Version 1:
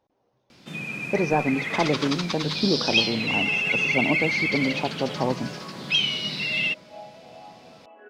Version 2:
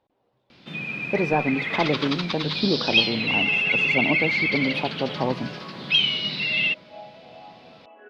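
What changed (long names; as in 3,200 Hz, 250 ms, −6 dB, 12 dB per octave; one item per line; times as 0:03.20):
speech: remove linear-phase brick-wall low-pass 6,700 Hz
master: add high shelf with overshoot 5,400 Hz −12.5 dB, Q 1.5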